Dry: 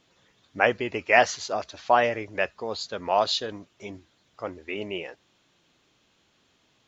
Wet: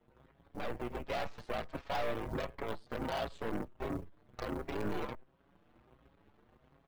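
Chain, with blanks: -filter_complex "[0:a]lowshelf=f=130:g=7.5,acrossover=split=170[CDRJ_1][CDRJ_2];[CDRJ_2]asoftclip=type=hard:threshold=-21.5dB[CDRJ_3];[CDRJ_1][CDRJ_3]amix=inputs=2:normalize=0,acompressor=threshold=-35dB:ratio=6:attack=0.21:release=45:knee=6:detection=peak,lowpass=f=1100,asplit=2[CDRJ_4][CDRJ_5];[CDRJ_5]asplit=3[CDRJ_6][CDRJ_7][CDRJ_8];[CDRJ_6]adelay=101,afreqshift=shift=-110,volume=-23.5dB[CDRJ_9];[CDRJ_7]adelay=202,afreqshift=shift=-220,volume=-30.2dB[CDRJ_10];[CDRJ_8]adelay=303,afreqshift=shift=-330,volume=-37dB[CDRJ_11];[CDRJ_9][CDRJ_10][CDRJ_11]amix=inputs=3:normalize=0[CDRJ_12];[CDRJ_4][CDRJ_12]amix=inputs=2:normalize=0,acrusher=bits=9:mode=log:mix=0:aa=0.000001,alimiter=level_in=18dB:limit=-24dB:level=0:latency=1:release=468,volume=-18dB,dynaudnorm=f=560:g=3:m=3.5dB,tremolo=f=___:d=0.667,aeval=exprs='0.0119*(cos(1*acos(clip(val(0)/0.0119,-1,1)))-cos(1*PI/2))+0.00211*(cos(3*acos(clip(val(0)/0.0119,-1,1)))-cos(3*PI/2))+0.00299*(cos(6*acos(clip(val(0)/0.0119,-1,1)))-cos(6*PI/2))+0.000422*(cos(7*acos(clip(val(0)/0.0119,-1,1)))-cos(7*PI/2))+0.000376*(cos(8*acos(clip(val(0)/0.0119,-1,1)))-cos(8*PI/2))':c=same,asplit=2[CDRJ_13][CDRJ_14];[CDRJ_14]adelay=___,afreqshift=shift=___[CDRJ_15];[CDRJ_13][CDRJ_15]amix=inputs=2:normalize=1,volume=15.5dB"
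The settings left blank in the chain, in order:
60, 6.3, 1.4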